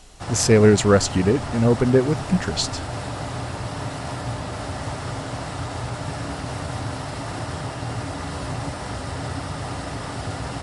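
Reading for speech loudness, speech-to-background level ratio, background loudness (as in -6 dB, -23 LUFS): -19.0 LUFS, 11.0 dB, -30.0 LUFS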